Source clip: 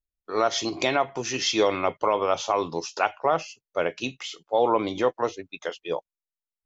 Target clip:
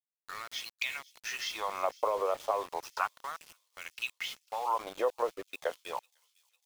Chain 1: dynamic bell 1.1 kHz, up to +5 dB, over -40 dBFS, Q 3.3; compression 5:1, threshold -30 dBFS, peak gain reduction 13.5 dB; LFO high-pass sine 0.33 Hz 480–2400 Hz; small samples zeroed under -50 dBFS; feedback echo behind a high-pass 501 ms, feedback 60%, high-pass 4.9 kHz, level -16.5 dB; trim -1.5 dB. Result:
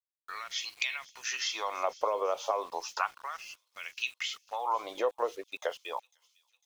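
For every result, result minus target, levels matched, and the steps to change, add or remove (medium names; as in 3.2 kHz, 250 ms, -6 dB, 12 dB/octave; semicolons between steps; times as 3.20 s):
small samples zeroed: distortion -12 dB; 8 kHz band +4.0 dB
change: small samples zeroed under -40.5 dBFS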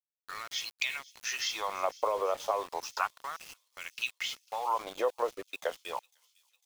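8 kHz band +4.0 dB
add after compression: treble shelf 5.2 kHz -10 dB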